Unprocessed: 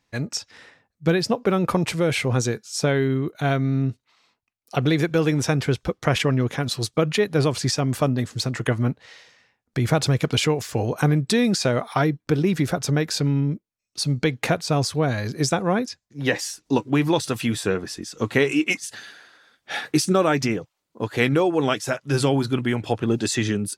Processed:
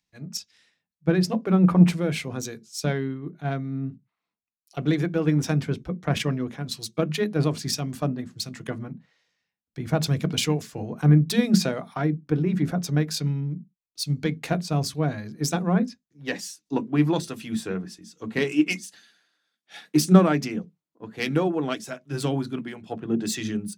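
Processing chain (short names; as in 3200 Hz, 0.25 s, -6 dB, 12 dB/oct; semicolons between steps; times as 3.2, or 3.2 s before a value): self-modulated delay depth 0.065 ms; upward compressor, threshold -32 dBFS; on a send at -13.5 dB: low shelf 120 Hz -6 dB + reverb RT60 0.20 s, pre-delay 3 ms; on the sum: three-band expander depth 100%; gain -6.5 dB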